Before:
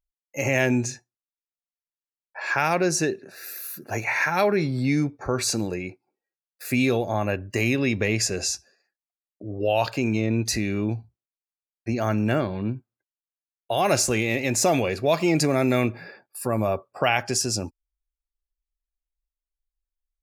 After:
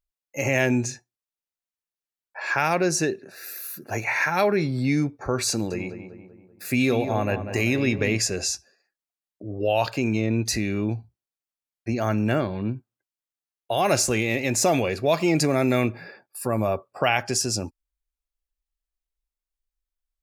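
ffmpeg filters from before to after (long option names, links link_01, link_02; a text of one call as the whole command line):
ffmpeg -i in.wav -filter_complex "[0:a]asettb=1/sr,asplit=3[link_01][link_02][link_03];[link_01]atrim=end=5.514[link_04];[link_02]atrim=start=5.51:end=8.2,asetpts=PTS-STARTPTS,afade=type=in:duration=0.004:curve=qsin,afade=type=out:start_time=2.686:duration=0.004:curve=qsin,asplit=2[link_05][link_06];[link_06]adelay=193,lowpass=frequency=2000:poles=1,volume=-9dB,asplit=2[link_07][link_08];[link_08]adelay=193,lowpass=frequency=2000:poles=1,volume=0.5,asplit=2[link_09][link_10];[link_10]adelay=193,lowpass=frequency=2000:poles=1,volume=0.5,asplit=2[link_11][link_12];[link_12]adelay=193,lowpass=frequency=2000:poles=1,volume=0.5,asplit=2[link_13][link_14];[link_14]adelay=193,lowpass=frequency=2000:poles=1,volume=0.5,asplit=2[link_15][link_16];[link_16]adelay=193,lowpass=frequency=2000:poles=1,volume=0.5[link_17];[link_05][link_07][link_09][link_11][link_13][link_15][link_17]amix=inputs=7:normalize=0,atrim=end_sample=118629[link_18];[link_03]atrim=start=8.196[link_19];[link_04][link_18]acrossfade=duration=0.004:curve1=hsin:curve2=qsin[link_20];[link_20][link_19]acrossfade=duration=0.004:curve1=qsin:curve2=hsin" out.wav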